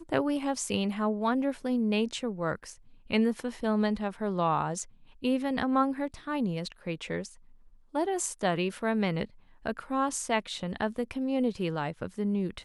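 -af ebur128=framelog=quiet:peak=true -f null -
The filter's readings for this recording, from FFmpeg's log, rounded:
Integrated loudness:
  I:         -30.6 LUFS
  Threshold: -40.8 LUFS
Loudness range:
  LRA:         2.4 LU
  Threshold: -50.9 LUFS
  LRA low:   -32.2 LUFS
  LRA high:  -29.8 LUFS
True peak:
  Peak:      -11.4 dBFS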